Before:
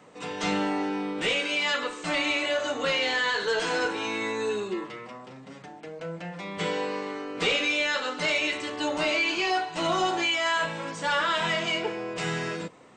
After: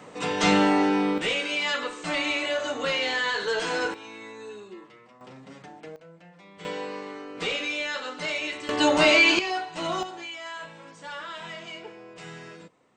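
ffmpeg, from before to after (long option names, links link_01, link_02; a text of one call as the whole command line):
ffmpeg -i in.wav -af "asetnsamples=nb_out_samples=441:pad=0,asendcmd='1.18 volume volume -0.5dB;3.94 volume volume -12dB;5.21 volume volume -1dB;5.96 volume volume -14dB;6.65 volume volume -4dB;8.69 volume volume 8dB;9.39 volume volume -3dB;10.03 volume volume -12dB',volume=7dB" out.wav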